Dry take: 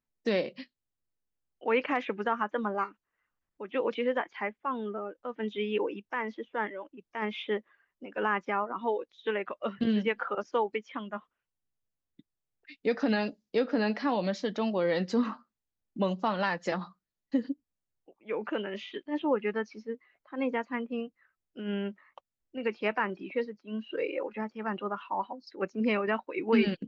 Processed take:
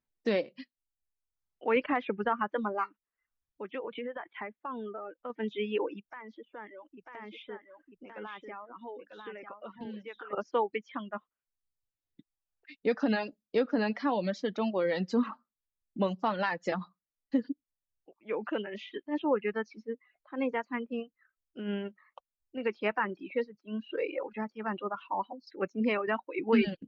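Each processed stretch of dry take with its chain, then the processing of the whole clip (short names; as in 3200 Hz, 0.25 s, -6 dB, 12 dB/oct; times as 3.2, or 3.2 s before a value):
1.76–2.52 LPF 4300 Hz 24 dB/oct + low shelf 160 Hz +9 dB
3.71–5.3 elliptic low-pass 3500 Hz + compressor 5:1, threshold -33 dBFS
6.03–10.33 compressor 2:1, threshold -49 dBFS + echo 0.945 s -5 dB
whole clip: reverb removal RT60 0.85 s; high shelf 5900 Hz -8 dB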